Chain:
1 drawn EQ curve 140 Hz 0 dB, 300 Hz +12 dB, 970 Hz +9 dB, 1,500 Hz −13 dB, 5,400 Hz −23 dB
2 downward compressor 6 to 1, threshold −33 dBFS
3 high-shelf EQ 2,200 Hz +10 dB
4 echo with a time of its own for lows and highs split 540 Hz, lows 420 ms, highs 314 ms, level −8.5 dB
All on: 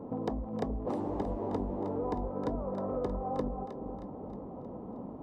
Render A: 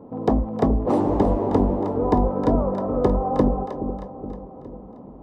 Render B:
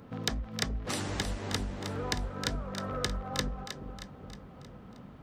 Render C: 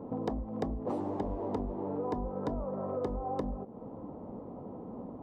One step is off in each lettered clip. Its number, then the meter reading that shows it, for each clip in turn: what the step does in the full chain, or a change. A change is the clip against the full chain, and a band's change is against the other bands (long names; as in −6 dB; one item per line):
2, average gain reduction 8.5 dB
1, 2 kHz band +21.0 dB
4, echo-to-direct ratio −7.0 dB to none audible